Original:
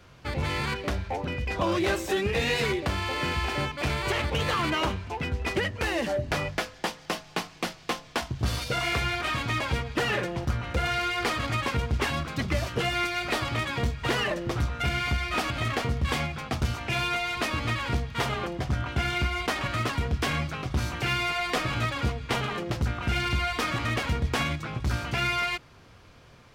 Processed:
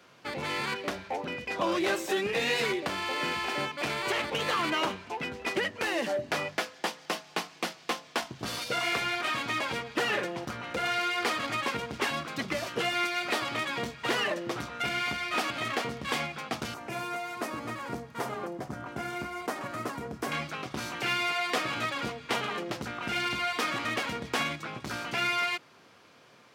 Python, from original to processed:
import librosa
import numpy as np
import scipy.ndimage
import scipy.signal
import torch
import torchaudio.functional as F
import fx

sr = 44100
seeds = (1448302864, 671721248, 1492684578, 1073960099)

y = fx.peak_eq(x, sr, hz=3200.0, db=-13.5, octaves=1.8, at=(16.74, 20.32))
y = scipy.signal.sosfilt(scipy.signal.cheby1(2, 1.0, 200.0, 'highpass', fs=sr, output='sos'), y)
y = fx.low_shelf(y, sr, hz=220.0, db=-8.5)